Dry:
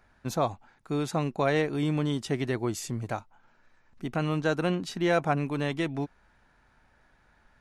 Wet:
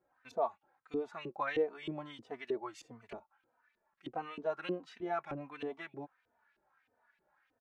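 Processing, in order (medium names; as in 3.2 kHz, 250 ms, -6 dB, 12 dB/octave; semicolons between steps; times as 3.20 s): LFO band-pass saw up 3.2 Hz 330–3100 Hz; endless flanger 3.2 ms -1.5 Hz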